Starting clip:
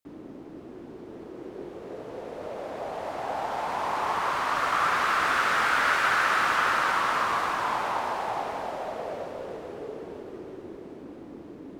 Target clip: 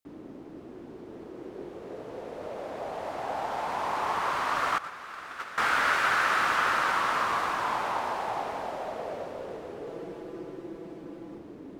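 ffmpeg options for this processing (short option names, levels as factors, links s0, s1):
-filter_complex "[0:a]asettb=1/sr,asplit=3[s0][s1][s2];[s0]atrim=end=4.784[s3];[s1]atrim=start=4.78:end=5.58,asetpts=PTS-STARTPTS,afade=t=in:d=0.004:c=qsin,afade=t=out:st=0.796:d=0.004:c=qsin,agate=range=0.158:threshold=0.0891:ratio=16:detection=peak[s4];[s2]atrim=start=5.576[s5];[s3][s4]acrossfade=d=0.004:c1=hsin:c2=qsin[s6];[s6][s5]acrossfade=d=0.004:c1=qsin:c2=hsin,asettb=1/sr,asplit=3[s7][s8][s9];[s7]atrim=end=9.864[s10];[s8]atrim=start=9.86:end=11.38,asetpts=PTS-STARTPTS,afade=t=in:d=0.004:c=qsin,afade=t=out:st=1.516:d=0.004:c=qsin,aecho=1:1:6:0.72,atrim=end_sample=67032[s11];[s9]atrim=start=11.376[s12];[s10][s11]acrossfade=d=0.004:c1=hsin:c2=qsin[s13];[s13][s12]acrossfade=d=0.004:c1=qsin:c2=hsin,volume=0.841"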